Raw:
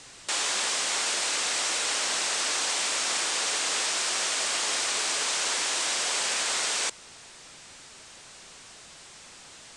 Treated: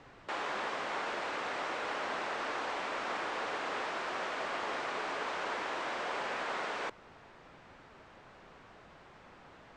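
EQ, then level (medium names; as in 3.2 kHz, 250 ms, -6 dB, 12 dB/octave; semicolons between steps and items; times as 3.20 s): low-pass 1.4 kHz 12 dB/octave; 0.0 dB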